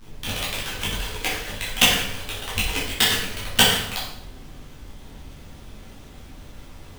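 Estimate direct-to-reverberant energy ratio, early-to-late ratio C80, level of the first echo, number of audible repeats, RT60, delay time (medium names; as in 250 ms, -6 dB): -8.0 dB, 6.0 dB, no echo, no echo, 0.75 s, no echo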